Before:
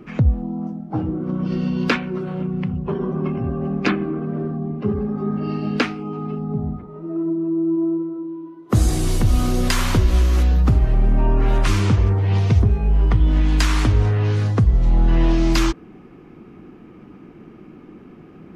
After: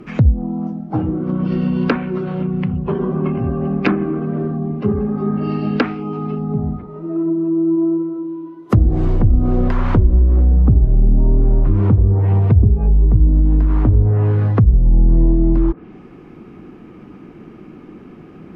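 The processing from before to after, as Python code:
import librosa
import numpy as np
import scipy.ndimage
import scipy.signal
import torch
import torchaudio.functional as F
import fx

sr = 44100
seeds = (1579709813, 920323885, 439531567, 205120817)

y = fx.env_lowpass_down(x, sr, base_hz=380.0, full_db=-11.5)
y = F.gain(torch.from_numpy(y), 4.0).numpy()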